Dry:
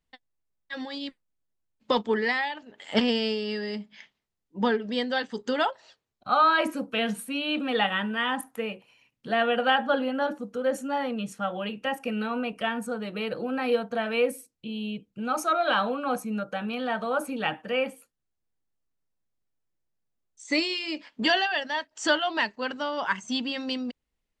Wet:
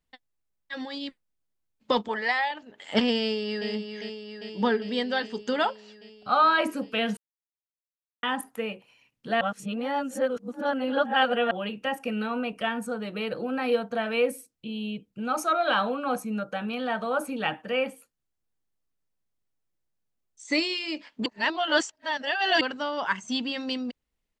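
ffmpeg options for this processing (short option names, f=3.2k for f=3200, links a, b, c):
-filter_complex "[0:a]asettb=1/sr,asplit=3[a][b][c];[a]atrim=end=2.084[d];[b]atrim=start=2.08:end=2.51,asetpts=PTS-STARTPTS,afade=t=in:d=0.004:c=qsin,afade=t=out:st=0.426:d=0.004:c=qsin,lowshelf=f=480:t=q:w=3:g=-7.5[e];[c]atrim=start=2.506[f];[d][e]acrossfade=d=0.004:c1=hsin:c2=qsin[g];[g][f]acrossfade=d=0.004:c1=qsin:c2=hsin,asplit=2[h][i];[i]afade=t=in:st=3.21:d=0.01,afade=t=out:st=3.69:d=0.01,aecho=0:1:400|800|1200|1600|2000|2400|2800|3200|3600|4000|4400|4800:0.421697|0.316272|0.237204|0.177903|0.133427|0.100071|0.0750529|0.0562897|0.0422173|0.0316629|0.0237472|0.0178104[j];[h][j]amix=inputs=2:normalize=0,asplit=7[k][l][m][n][o][p][q];[k]atrim=end=7.17,asetpts=PTS-STARTPTS,afade=t=out:st=7.166:d=0.004:c=hsin[r];[l]atrim=start=7.17:end=8.23,asetpts=PTS-STARTPTS,volume=0[s];[m]atrim=start=8.23:end=9.412,asetpts=PTS-STARTPTS,afade=t=in:d=0.004:c=hsin[t];[n]atrim=start=9.408:end=11.512,asetpts=PTS-STARTPTS,areverse[u];[o]atrim=start=11.508:end=21.262[v];[p]atrim=start=21.258:end=22.612,asetpts=PTS-STARTPTS,areverse[w];[q]atrim=start=22.608[x];[r][s][t]concat=n=3:v=0:a=1[y];[y][u]acrossfade=d=0.004:c1=hsin:c2=hsin[z];[z][v]acrossfade=d=0.004:c1=hsin:c2=hsin[aa];[aa][w]acrossfade=d=0.004:c1=hsin:c2=hsin[ab];[ab][x]acrossfade=d=0.004:c1=hsin:c2=hsin"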